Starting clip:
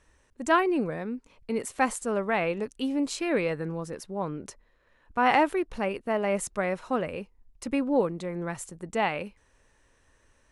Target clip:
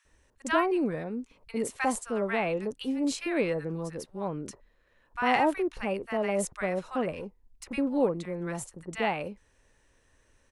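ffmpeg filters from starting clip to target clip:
-filter_complex "[0:a]acrossover=split=1100[a][b];[a]adelay=50[c];[c][b]amix=inputs=2:normalize=0,asettb=1/sr,asplit=3[d][e][f];[d]atrim=end=7.114[g];[e]atrim=start=7.11:end=7.74,asetpts=PTS-STARTPTS,afade=t=in:d=0.004:c=qsin,afade=t=out:st=0.626:d=0.004:c=qsin,aeval=exprs='(tanh(25.1*val(0)+0.3)-tanh(0.3))/25.1':c=same[h];[f]atrim=start=7.736[i];[g][h]acrossfade=d=0.004:c1=hsin:c2=qsin[j];[j][i]acrossfade=d=0.004:c1=qsin:c2=hsin,volume=-1dB"

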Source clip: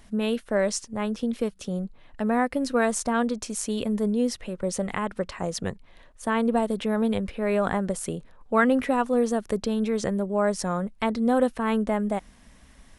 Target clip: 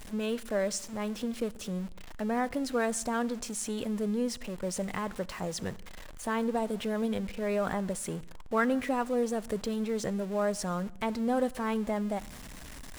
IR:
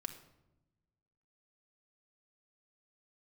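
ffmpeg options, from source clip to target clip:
-filter_complex "[0:a]aeval=exprs='val(0)+0.5*0.0211*sgn(val(0))':c=same,asplit=2[a][b];[b]equalizer=f=7.5k:w=6.2:g=8.5[c];[1:a]atrim=start_sample=2205,atrim=end_sample=6174,asetrate=28224,aresample=44100[d];[c][d]afir=irnorm=-1:irlink=0,volume=-11dB[e];[a][e]amix=inputs=2:normalize=0,volume=-9dB"

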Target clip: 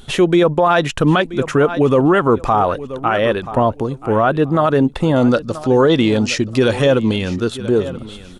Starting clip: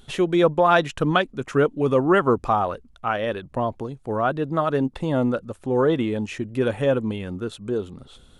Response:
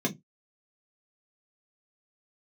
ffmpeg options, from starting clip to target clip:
-filter_complex "[0:a]asettb=1/sr,asplit=3[a][b][c];[a]atrim=end=5.164[d];[b]atrim=start=5.16:end=7.5,asetpts=PTS-STARTPTS,afade=t=in:d=0.004:c=qsin,afade=t=out:st=2.336:d=0.004:c=qsin,equalizer=f=4.9k:w=1.4:g=15[e];[c]atrim=start=7.496[f];[d][e]acrossfade=d=0.004:c1=hsin:c2=qsin[g];[g][f]acrossfade=d=0.004:c1=qsin:c2=hsin,aecho=1:1:980|1960:0.126|0.0315,alimiter=level_in=14dB:limit=-1dB:release=50:level=0:latency=1,volume=-4dB"

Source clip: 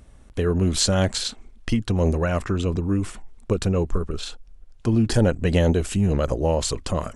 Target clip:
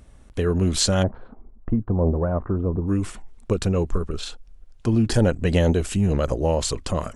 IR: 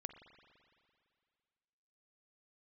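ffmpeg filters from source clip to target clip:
-filter_complex "[0:a]asplit=3[a][b][c];[a]afade=t=out:st=1.02:d=0.02[d];[b]lowpass=f=1.1k:w=0.5412,lowpass=f=1.1k:w=1.3066,afade=t=in:st=1.02:d=0.02,afade=t=out:st=2.86:d=0.02[e];[c]afade=t=in:st=2.86:d=0.02[f];[d][e][f]amix=inputs=3:normalize=0"

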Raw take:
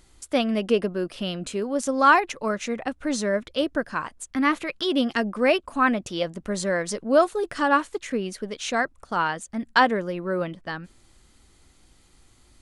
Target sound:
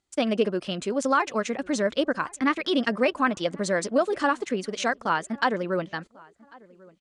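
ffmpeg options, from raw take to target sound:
-filter_complex "[0:a]lowpass=f=8.8k:w=0.5412,lowpass=f=8.8k:w=1.3066,agate=range=-20dB:threshold=-45dB:ratio=16:detection=peak,highpass=f=130:p=1,alimiter=limit=-12.5dB:level=0:latency=1:release=241,atempo=1.8,asplit=2[a][b];[b]adelay=1094,lowpass=f=1.8k:p=1,volume=-24dB,asplit=2[c][d];[d]adelay=1094,lowpass=f=1.8k:p=1,volume=0.32[e];[c][e]amix=inputs=2:normalize=0[f];[a][f]amix=inputs=2:normalize=0,volume=1dB"

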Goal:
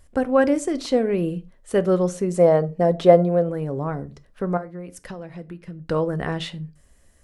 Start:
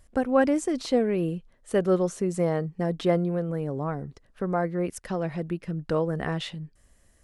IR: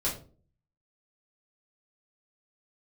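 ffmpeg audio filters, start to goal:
-filter_complex "[0:a]asettb=1/sr,asplit=3[a][b][c];[a]atrim=end=2.364[d];[b]atrim=start=2.36:end=3.49,asetpts=PTS-STARTPTS,afade=t=in:d=0.004:c=qsin,afade=t=out:st=1.126:d=0.004:c=qsin,equalizer=f=620:w=1.7:g=11[e];[c]atrim=start=3.486[f];[d][e]acrossfade=d=0.004:c1=hsin:c2=qsin[g];[g][f]acrossfade=d=0.004:c1=qsin:c2=hsin,asettb=1/sr,asplit=3[h][i][j];[h]atrim=end=4.574[k];[i]atrim=start=4.57:end=5.88,asetpts=PTS-STARTPTS,afade=t=in:d=0.004:c=qsin,afade=t=out:st=1.306:d=0.004:c=qsin,acompressor=threshold=-36dB:ratio=6[l];[j]atrim=start=5.876[m];[k][l]acrossfade=d=0.004:c1=hsin:c2=qsin[n];[n][m]acrossfade=d=0.004:c1=qsin:c2=hsin,asplit=2[o][p];[1:a]atrim=start_sample=2205,afade=t=out:st=0.19:d=0.01,atrim=end_sample=8820[q];[p][q]afir=irnorm=-1:irlink=0,volume=-18dB[r];[o][r]amix=inputs=2:normalize=0,volume=2dB"

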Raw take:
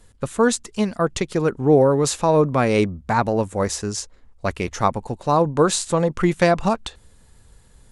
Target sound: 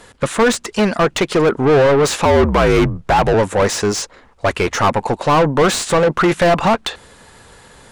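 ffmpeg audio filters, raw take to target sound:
-filter_complex "[0:a]asplit=2[a][b];[b]highpass=f=720:p=1,volume=29dB,asoftclip=type=tanh:threshold=-3.5dB[c];[a][c]amix=inputs=2:normalize=0,lowpass=f=2.2k:p=1,volume=-6dB,asettb=1/sr,asplit=3[d][e][f];[d]atrim=end=2.254[g];[e]atrim=start=2.25:end=3.34,asetpts=PTS-STARTPTS,afade=t=in:d=0.004:c=qsin,afade=t=out:st=1.086:d=0.004:c=qsin,afreqshift=-66[h];[f]atrim=start=3.336[i];[g][h]acrossfade=d=0.004:c1=hsin:c2=qsin[j];[j][i]acrossfade=d=0.004:c1=qsin:c2=hsin,volume=-1.5dB"

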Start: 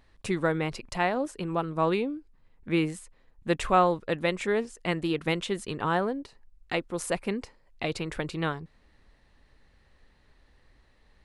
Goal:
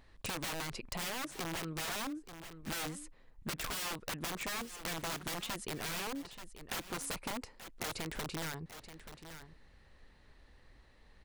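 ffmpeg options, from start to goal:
-af "aeval=exprs='(mod(20*val(0)+1,2)-1)/20':c=same,aecho=1:1:881:0.126,acompressor=threshold=-37dB:ratio=6"

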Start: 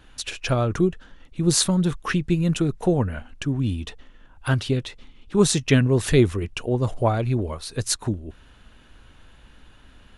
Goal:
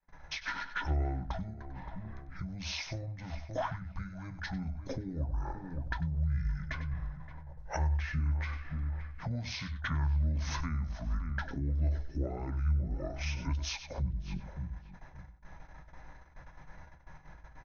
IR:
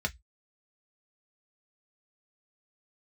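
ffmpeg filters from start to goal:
-filter_complex "[0:a]asetrate=25442,aresample=44100,equalizer=f=370:w=2.2:g=-5.5,agate=range=-32dB:threshold=-48dB:ratio=16:detection=peak,asplit=2[a][b];[b]adelay=571,lowpass=f=1.5k:p=1,volume=-17.5dB,asplit=2[c][d];[d]adelay=571,lowpass=f=1.5k:p=1,volume=0.21[e];[c][e]amix=inputs=2:normalize=0[f];[a][f]amix=inputs=2:normalize=0,adynamicequalizer=threshold=0.0178:dfrequency=150:dqfactor=0.75:tfrequency=150:tqfactor=0.75:attack=5:release=100:ratio=0.375:range=2:mode=cutabove:tftype=bell,aecho=1:1:96:0.211,acompressor=threshold=-34dB:ratio=8,asplit=2[g][h];[1:a]atrim=start_sample=2205[i];[h][i]afir=irnorm=-1:irlink=0,volume=-11.5dB[j];[g][j]amix=inputs=2:normalize=0"

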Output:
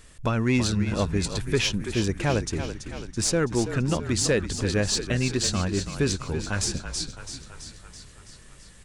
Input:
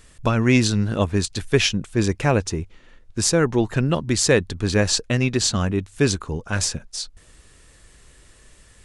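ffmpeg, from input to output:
-filter_complex "[0:a]asplit=2[a][b];[b]acompressor=threshold=-29dB:ratio=6,volume=-1.5dB[c];[a][c]amix=inputs=2:normalize=0,asoftclip=type=tanh:threshold=-6dB,asplit=9[d][e][f][g][h][i][j][k][l];[e]adelay=331,afreqshift=-39,volume=-9.5dB[m];[f]adelay=662,afreqshift=-78,volume=-13.7dB[n];[g]adelay=993,afreqshift=-117,volume=-17.8dB[o];[h]adelay=1324,afreqshift=-156,volume=-22dB[p];[i]adelay=1655,afreqshift=-195,volume=-26.1dB[q];[j]adelay=1986,afreqshift=-234,volume=-30.3dB[r];[k]adelay=2317,afreqshift=-273,volume=-34.4dB[s];[l]adelay=2648,afreqshift=-312,volume=-38.6dB[t];[d][m][n][o][p][q][r][s][t]amix=inputs=9:normalize=0,volume=-6dB"

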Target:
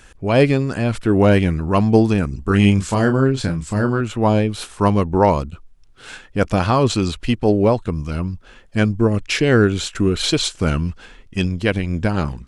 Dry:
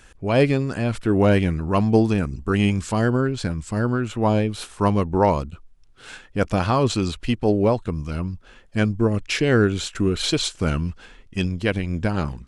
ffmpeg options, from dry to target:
-filter_complex "[0:a]asettb=1/sr,asplit=3[a][b][c];[a]atrim=end=2.434[d];[b]atrim=start=2.43:end=4.01,asetpts=PTS-STARTPTS,afade=t=in:d=0.004:c=qsin,afade=t=out:st=1.576:d=0.004:c=qsin,asplit=2[e][f];[f]adelay=30,volume=-7dB[g];[e][g]amix=inputs=2:normalize=0,atrim=end_sample=69678[h];[c]atrim=start=4.006[i];[d][h]acrossfade=d=0.004:c1=hsin:c2=qsin[j];[j][i]acrossfade=d=0.004:c1=qsin:c2=hsin,volume=3.5dB"

